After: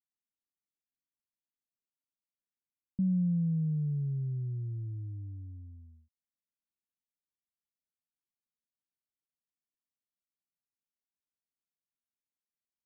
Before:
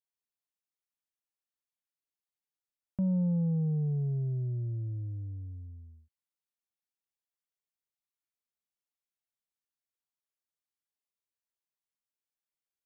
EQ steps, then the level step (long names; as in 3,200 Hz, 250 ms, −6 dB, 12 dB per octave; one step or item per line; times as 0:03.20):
transistor ladder low-pass 320 Hz, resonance 40%
+4.5 dB